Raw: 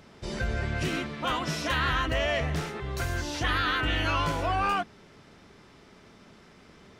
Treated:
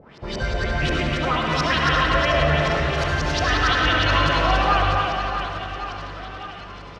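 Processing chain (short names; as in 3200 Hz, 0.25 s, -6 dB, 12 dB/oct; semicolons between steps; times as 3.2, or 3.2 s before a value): high shelf 6300 Hz +10 dB; in parallel at +2 dB: limiter -28 dBFS, peak gain reduction 11 dB; on the sum: crossover distortion -55 dBFS; LFO low-pass saw up 5.6 Hz 480–5500 Hz; reverse bouncing-ball echo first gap 0.28 s, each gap 1.3×, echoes 5; on a send at -1.5 dB: reverb RT60 1.6 s, pre-delay 58 ms; on the sum: gain -1.5 dB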